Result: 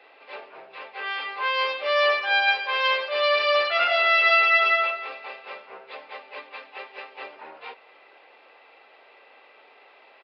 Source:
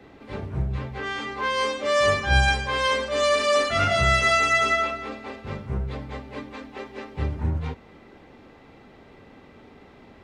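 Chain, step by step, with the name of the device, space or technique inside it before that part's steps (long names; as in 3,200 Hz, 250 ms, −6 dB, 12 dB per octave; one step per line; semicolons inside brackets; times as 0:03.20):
musical greeting card (downsampling to 11,025 Hz; high-pass filter 530 Hz 24 dB per octave; parametric band 2,600 Hz +8.5 dB 0.3 octaves)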